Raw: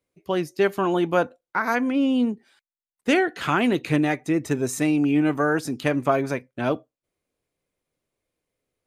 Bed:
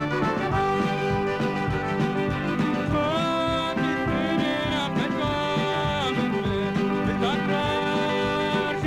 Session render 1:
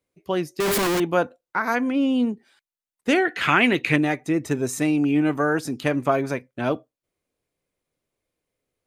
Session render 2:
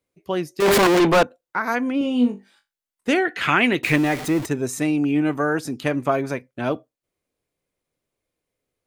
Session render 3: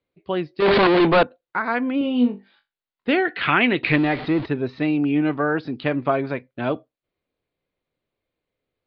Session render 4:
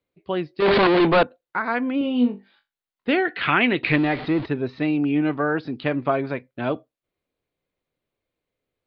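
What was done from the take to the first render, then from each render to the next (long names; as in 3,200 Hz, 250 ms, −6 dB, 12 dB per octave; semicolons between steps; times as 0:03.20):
0:00.60–0:01.00: sign of each sample alone; 0:03.25–0:03.96: parametric band 2,200 Hz +11 dB 1.1 octaves
0:00.62–0:01.23: mid-hump overdrive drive 32 dB, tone 3,900 Hz, clips at −8.5 dBFS; 0:01.99–0:03.10: flutter between parallel walls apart 3.5 metres, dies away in 0.22 s; 0:03.83–0:04.46: converter with a step at zero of −26.5 dBFS
Butterworth low-pass 4,500 Hz 72 dB per octave
level −1 dB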